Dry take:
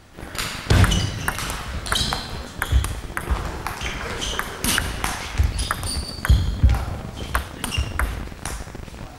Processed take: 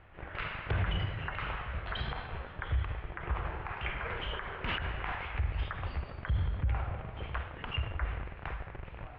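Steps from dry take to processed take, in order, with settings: steep low-pass 2800 Hz 36 dB/oct; bell 240 Hz -11 dB 0.92 oct; limiter -16 dBFS, peak gain reduction 11 dB; gain -7 dB

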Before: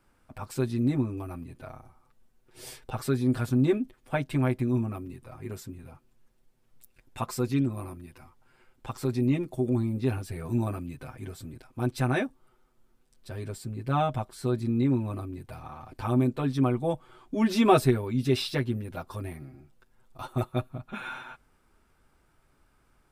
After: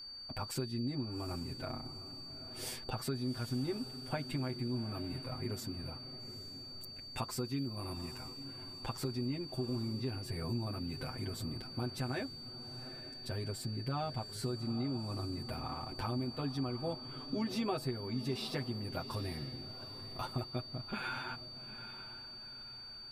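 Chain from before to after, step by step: compressor 4:1, threshold -38 dBFS, peak gain reduction 19.5 dB; whine 4600 Hz -47 dBFS; on a send: diffused feedback echo 0.826 s, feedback 43%, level -12 dB; on the sum: gain +1.5 dB

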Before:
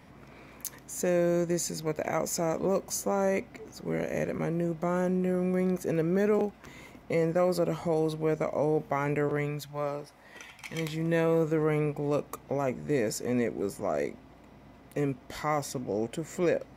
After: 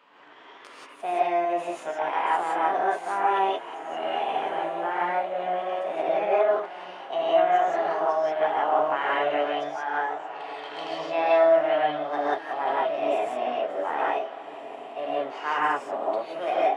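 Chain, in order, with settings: tracing distortion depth 0.029 ms; Bessel high-pass 610 Hz, order 4; high shelf 4600 Hz -6 dB; diffused feedback echo 1.538 s, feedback 40%, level -13 dB; formant shift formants +6 st; tape spacing loss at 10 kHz 29 dB; non-linear reverb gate 0.2 s rising, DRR -6 dB; gain +5.5 dB

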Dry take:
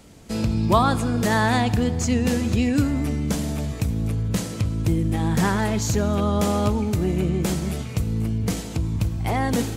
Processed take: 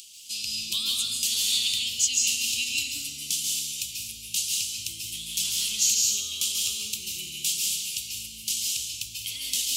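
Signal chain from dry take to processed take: upward compressor, threshold -41 dBFS; elliptic high-pass 2800 Hz, stop band 40 dB; reverb, pre-delay 0.133 s, DRR -0.5 dB; gain +7.5 dB

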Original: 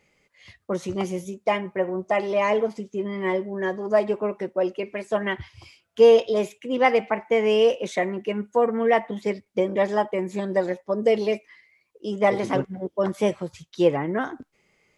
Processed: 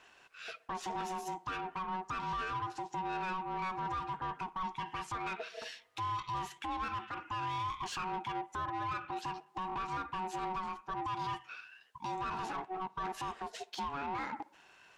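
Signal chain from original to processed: compressor 4:1, threshold -33 dBFS, peak gain reduction 18.5 dB; limiter -29.5 dBFS, peak gain reduction 10.5 dB; ring modulator 560 Hz; overdrive pedal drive 14 dB, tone 5200 Hz, clips at -29.5 dBFS; tape echo 61 ms, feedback 72%, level -22 dB, low-pass 2300 Hz

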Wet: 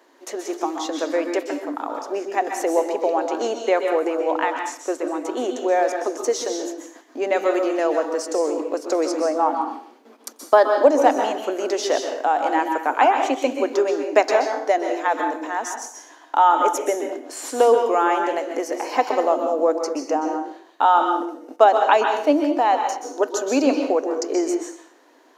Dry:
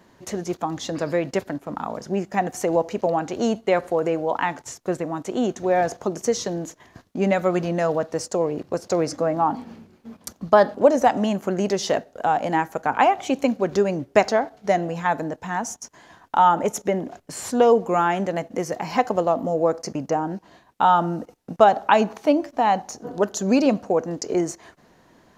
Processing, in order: elliptic high-pass 280 Hz, stop band 40 dB; plate-style reverb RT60 0.56 s, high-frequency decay 0.95×, pre-delay 0.115 s, DRR 4 dB; gain +1 dB

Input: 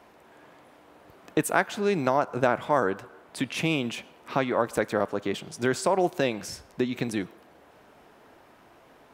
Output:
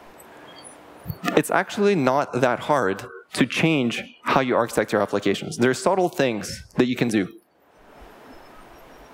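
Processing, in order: spectral noise reduction 26 dB; three-band squash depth 100%; gain +4.5 dB

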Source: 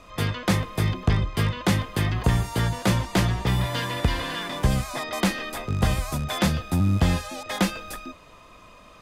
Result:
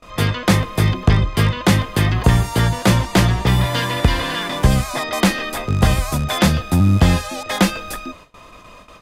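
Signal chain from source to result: gate with hold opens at -39 dBFS; gain +7.5 dB

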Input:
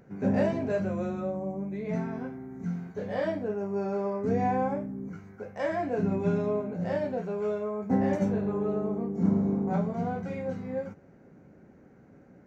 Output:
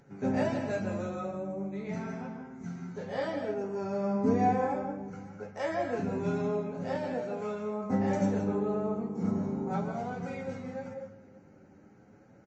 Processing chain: 3.82–4.48 bell 110 Hz -> 390 Hz +14 dB 0.75 oct; outdoor echo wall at 100 m, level -22 dB; on a send at -6 dB: reverb RT60 0.60 s, pre-delay 0.141 s; on the sum: flange 0.3 Hz, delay 7.1 ms, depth 3.3 ms, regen +46%; high shelf 3200 Hz +10 dB; small resonant body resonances 850/1300 Hz, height 8 dB, ringing for 45 ms; MP3 32 kbps 22050 Hz

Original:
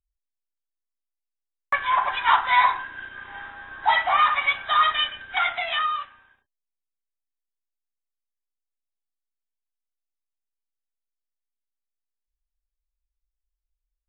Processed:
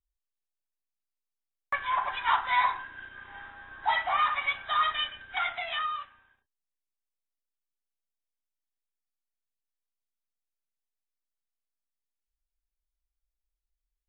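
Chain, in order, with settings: low shelf 150 Hz +4 dB; gain -7 dB

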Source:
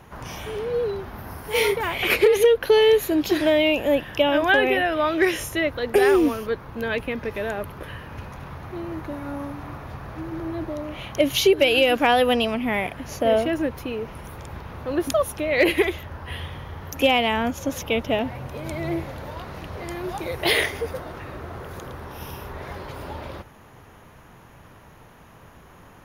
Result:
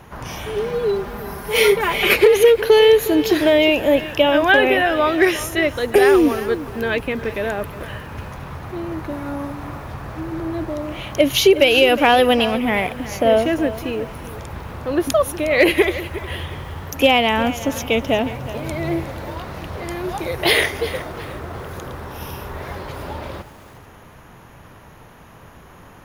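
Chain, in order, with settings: 0.56–2.13 comb 5 ms; lo-fi delay 0.361 s, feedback 35%, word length 7-bit, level -14.5 dB; gain +4.5 dB

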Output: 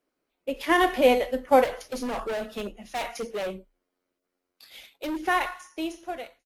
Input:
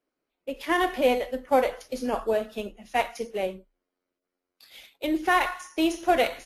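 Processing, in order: ending faded out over 2.03 s; 1.64–5.19 overloaded stage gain 30.5 dB; gain +3 dB

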